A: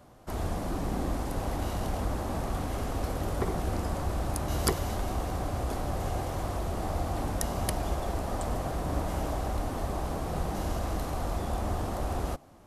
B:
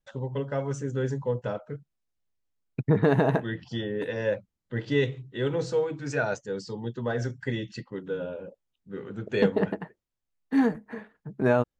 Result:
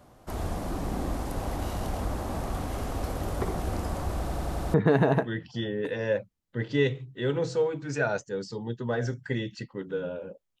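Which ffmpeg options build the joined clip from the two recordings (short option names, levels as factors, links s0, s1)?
-filter_complex "[0:a]apad=whole_dur=10.6,atrim=end=10.6,asplit=6[s0][s1][s2][s3][s4][s5];[s0]atrim=end=4.292[s6];[s1]atrim=start=4.198:end=4.292[s7];[s2]atrim=start=4.198:end=4.292[s8];[s3]atrim=start=4.198:end=4.292[s9];[s4]atrim=start=4.198:end=4.292[s10];[s5]atrim=start=4.198:end=4.292[s11];[1:a]atrim=start=2.908:end=8.77[s12];[s6][s7]acrossfade=d=0.004:c1=hsin:c2=hsin[s13];[s13][s8]acrossfade=d=0.004:c1=hsin:c2=hsin[s14];[s14][s9]acrossfade=d=0.004:c1=hsin:c2=hsin[s15];[s15][s10]acrossfade=d=0.004:c1=hsin:c2=hsin[s16];[s16][s11]acrossfade=d=0.004:c1=hsin:c2=hsin[s17];[s17][s12]acrossfade=d=0.004:c1=hsin:c2=hsin"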